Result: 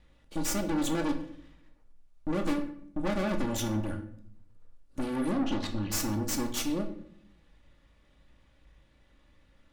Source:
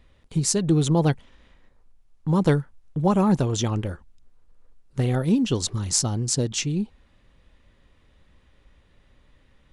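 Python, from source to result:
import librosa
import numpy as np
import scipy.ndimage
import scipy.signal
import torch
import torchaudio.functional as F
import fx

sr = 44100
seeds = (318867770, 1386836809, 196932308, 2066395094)

y = fx.lower_of_two(x, sr, delay_ms=3.5)
y = fx.lowpass(y, sr, hz=3900.0, slope=24, at=(5.31, 5.92))
y = fx.tube_stage(y, sr, drive_db=29.0, bias=0.75)
y = fx.room_shoebox(y, sr, seeds[0], volume_m3=120.0, walls='mixed', distance_m=0.52)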